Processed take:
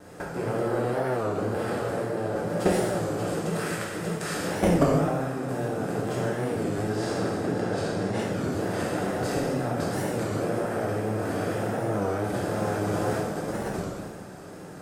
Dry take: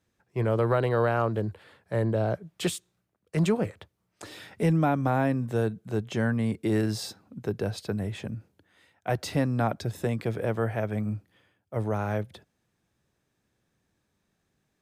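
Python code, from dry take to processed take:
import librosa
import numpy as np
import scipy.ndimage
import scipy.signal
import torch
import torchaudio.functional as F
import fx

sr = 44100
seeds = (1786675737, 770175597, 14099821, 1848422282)

p1 = fx.bin_compress(x, sr, power=0.4)
p2 = fx.highpass(p1, sr, hz=1300.0, slope=24, at=(3.53, 4.34))
p3 = fx.air_absorb(p2, sr, metres=64.0, at=(6.88, 8.2))
p4 = p3 + fx.echo_swing(p3, sr, ms=979, ratio=1.5, feedback_pct=42, wet_db=-12.5, dry=0)
p5 = fx.level_steps(p4, sr, step_db=18)
p6 = fx.peak_eq(p5, sr, hz=3300.0, db=-7.0, octaves=1.2)
p7 = fx.rev_gated(p6, sr, seeds[0], gate_ms=470, shape='falling', drr_db=-7.5)
p8 = fx.vibrato(p7, sr, rate_hz=2.0, depth_cents=37.0)
p9 = fx.rider(p8, sr, range_db=4, speed_s=2.0)
y = fx.record_warp(p9, sr, rpm=33.33, depth_cents=160.0)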